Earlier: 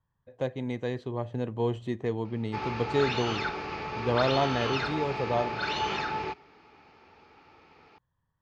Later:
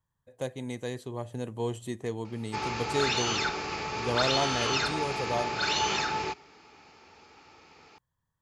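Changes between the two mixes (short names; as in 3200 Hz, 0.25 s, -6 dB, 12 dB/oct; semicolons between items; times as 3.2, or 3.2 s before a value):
speech -4.0 dB; master: remove air absorption 220 m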